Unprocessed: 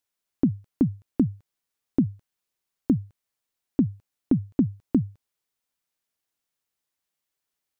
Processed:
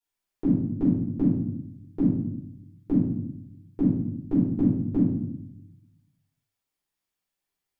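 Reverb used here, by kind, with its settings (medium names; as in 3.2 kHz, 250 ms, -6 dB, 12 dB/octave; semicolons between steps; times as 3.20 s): simulated room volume 200 m³, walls mixed, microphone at 4.4 m; trim -13 dB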